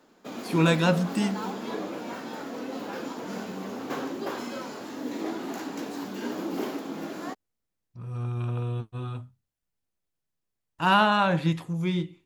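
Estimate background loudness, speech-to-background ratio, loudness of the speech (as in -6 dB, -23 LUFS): -35.0 LUFS, 9.5 dB, -25.5 LUFS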